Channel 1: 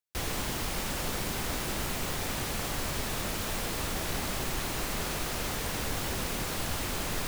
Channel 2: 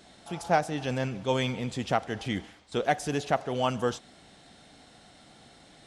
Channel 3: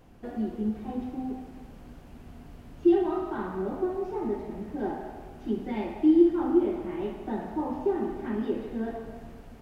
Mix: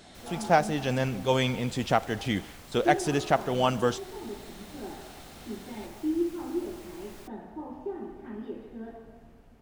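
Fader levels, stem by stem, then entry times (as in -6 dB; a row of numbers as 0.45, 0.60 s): -17.0, +2.5, -9.0 dB; 0.00, 0.00, 0.00 s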